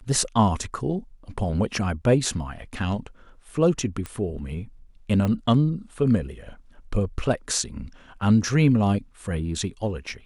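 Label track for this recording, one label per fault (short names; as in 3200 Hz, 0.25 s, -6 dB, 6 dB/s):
4.060000	4.060000	pop -18 dBFS
5.250000	5.250000	pop -14 dBFS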